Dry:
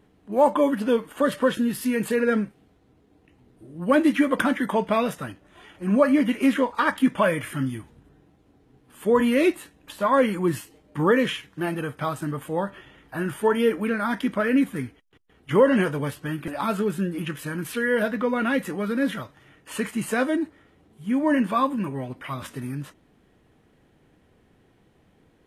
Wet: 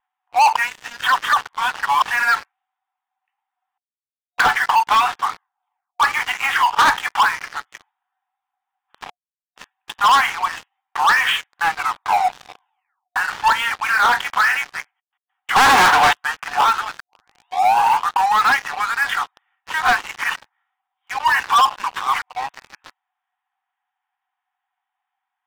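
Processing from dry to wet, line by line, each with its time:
0:00.56–0:02.02: reverse
0:03.78–0:04.38: silence
0:05.08: tape stop 0.92 s
0:07.22–0:07.72: low-pass filter 1,100 Hz 6 dB per octave
0:09.10–0:09.56: silence
0:11.60: tape stop 1.56 s
0:13.88–0:14.76: double-tracking delay 24 ms −8.5 dB
0:15.56–0:16.13: leveller curve on the samples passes 5
0:17.00: tape start 1.55 s
0:19.74–0:20.35: reverse
0:21.94–0:22.49: reverse
whole clip: brick-wall band-pass 720–3,800 Hz; spectral tilt −4 dB per octave; leveller curve on the samples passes 5

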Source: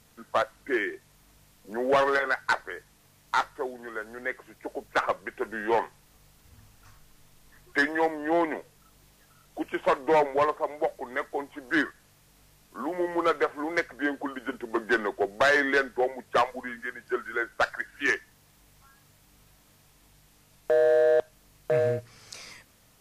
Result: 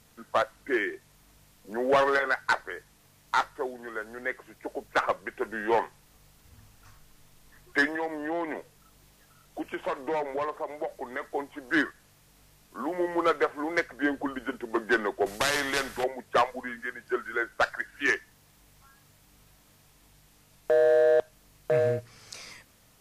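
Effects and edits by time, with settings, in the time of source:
0:07.87–0:11.35: downward compressor 3 to 1, threshold −29 dBFS
0:14.03–0:14.44: low-shelf EQ 140 Hz +11 dB
0:15.26–0:16.04: every bin compressed towards the loudest bin 2 to 1

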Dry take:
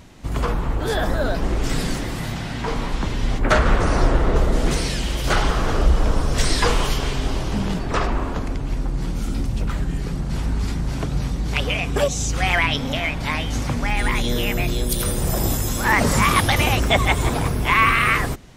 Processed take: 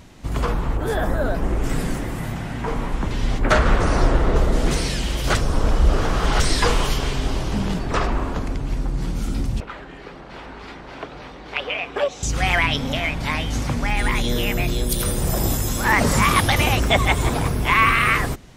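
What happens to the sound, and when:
0:00.77–0:03.11: parametric band 4,400 Hz −9.5 dB 1.3 octaves
0:05.35–0:06.40: reverse
0:09.60–0:12.23: three-way crossover with the lows and the highs turned down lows −22 dB, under 350 Hz, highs −22 dB, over 3,800 Hz

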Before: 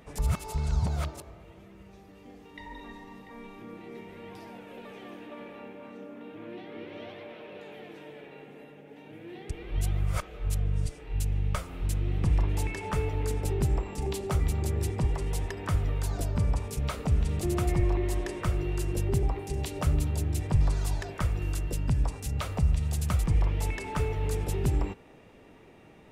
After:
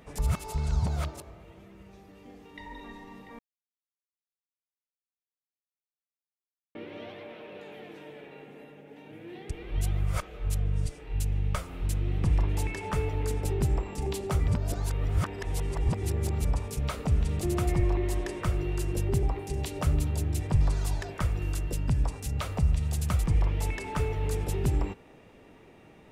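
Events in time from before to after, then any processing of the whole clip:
0:03.39–0:06.75: silence
0:14.48–0:16.45: reverse

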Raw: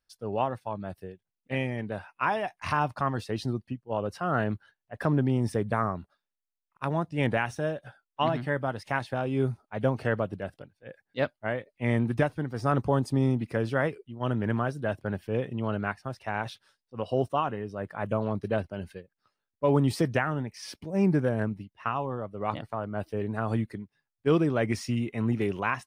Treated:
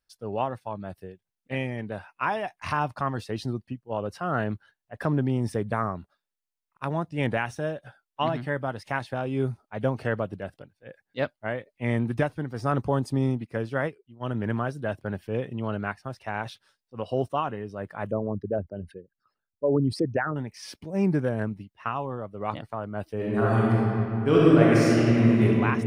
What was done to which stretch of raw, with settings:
0:13.27–0:14.35: expander for the loud parts, over −46 dBFS
0:18.11–0:20.36: spectral envelope exaggerated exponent 2
0:23.15–0:25.43: thrown reverb, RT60 3 s, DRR −7 dB

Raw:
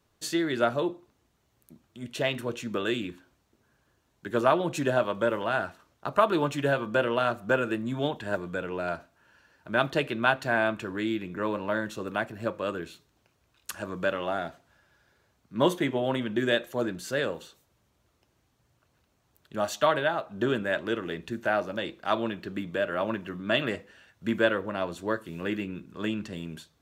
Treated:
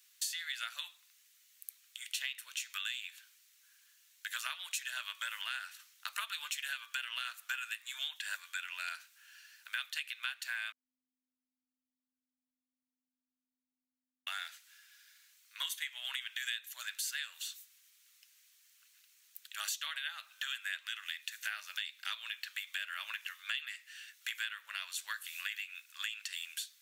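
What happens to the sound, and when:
0:10.72–0:14.27: beep over 254 Hz −19 dBFS
whole clip: inverse Chebyshev high-pass filter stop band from 320 Hz, stop band 80 dB; high-shelf EQ 7,000 Hz +10.5 dB; downward compressor 8 to 1, threshold −43 dBFS; level +7.5 dB

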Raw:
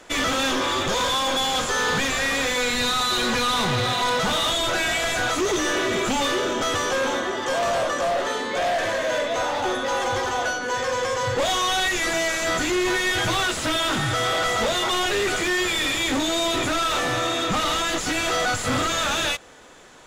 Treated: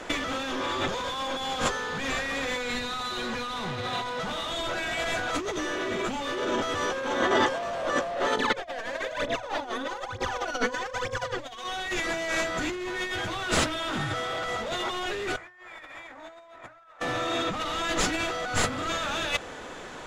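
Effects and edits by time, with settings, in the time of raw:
0:08.37–0:11.64: phase shifter 1.1 Hz, delay 4.6 ms, feedback 78%
0:15.37–0:17.00: flat-topped bell 1,100 Hz +13.5 dB 2.3 octaves
whole clip: compressor whose output falls as the input rises −28 dBFS, ratio −0.5; high-shelf EQ 5,500 Hz −11.5 dB; mains-hum notches 60/120 Hz

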